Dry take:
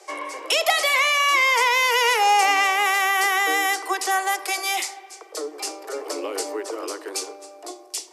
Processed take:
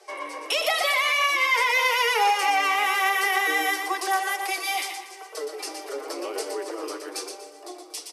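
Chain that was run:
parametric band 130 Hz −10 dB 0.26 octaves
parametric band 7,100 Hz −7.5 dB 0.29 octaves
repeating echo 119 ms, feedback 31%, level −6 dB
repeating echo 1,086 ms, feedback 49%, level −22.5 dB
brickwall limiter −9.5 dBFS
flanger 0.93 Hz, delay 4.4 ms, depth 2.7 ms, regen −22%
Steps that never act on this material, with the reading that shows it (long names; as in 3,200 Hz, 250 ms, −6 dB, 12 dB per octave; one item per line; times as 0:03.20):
parametric band 130 Hz: nothing at its input below 290 Hz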